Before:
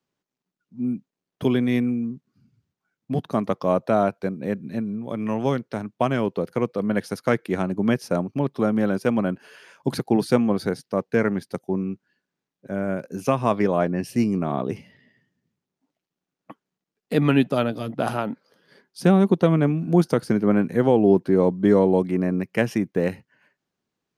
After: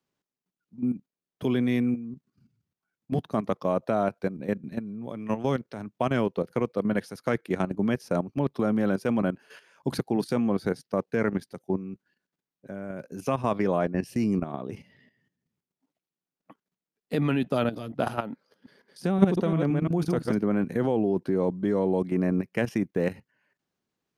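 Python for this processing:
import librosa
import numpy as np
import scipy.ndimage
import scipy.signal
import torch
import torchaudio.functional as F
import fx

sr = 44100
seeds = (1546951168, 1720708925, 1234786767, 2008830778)

y = fx.reverse_delay(x, sr, ms=173, wet_db=-5, at=(18.32, 20.38))
y = fx.level_steps(y, sr, step_db=12)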